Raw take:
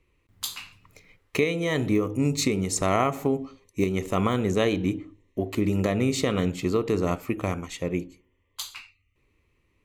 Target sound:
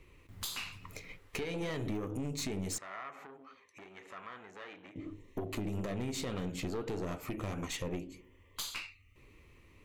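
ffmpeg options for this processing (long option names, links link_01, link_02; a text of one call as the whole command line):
ffmpeg -i in.wav -filter_complex "[0:a]flanger=delay=4.8:depth=7.2:regen=-69:speed=1.7:shape=triangular,acompressor=threshold=-38dB:ratio=8,aeval=exprs='(tanh(89.1*val(0)+0.45)-tanh(0.45))/89.1':channel_layout=same,alimiter=level_in=19.5dB:limit=-24dB:level=0:latency=1:release=431,volume=-19.5dB,asettb=1/sr,asplit=3[link_01][link_02][link_03];[link_01]atrim=end=2.784[link_04];[link_02]atrim=start=2.78:end=4.96,asetpts=PTS-STARTPTS,afade=type=in:duration=0.004:curve=qsin,afade=type=out:start_time=2.176:duration=0.004:curve=qsin,bandpass=frequency=1600:width_type=q:width=1.5:csg=0[link_05];[link_03]atrim=start=4.956[link_06];[link_04][link_05]acrossfade=duration=0.004:curve1=hsin:curve2=qsin[link_07];[link_07][link_06]acrossfade=duration=0.004:curve1=qsin:curve2=hsin,volume=14.5dB" out.wav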